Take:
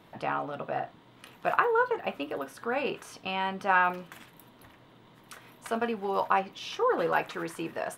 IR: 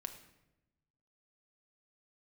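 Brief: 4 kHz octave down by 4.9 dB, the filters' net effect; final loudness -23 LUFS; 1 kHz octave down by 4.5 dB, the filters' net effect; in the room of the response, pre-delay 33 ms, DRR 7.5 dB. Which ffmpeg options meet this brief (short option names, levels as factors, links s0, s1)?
-filter_complex "[0:a]equalizer=f=1000:t=o:g=-5.5,equalizer=f=4000:t=o:g=-7,asplit=2[s0][s1];[1:a]atrim=start_sample=2205,adelay=33[s2];[s1][s2]afir=irnorm=-1:irlink=0,volume=0.562[s3];[s0][s3]amix=inputs=2:normalize=0,volume=2.82"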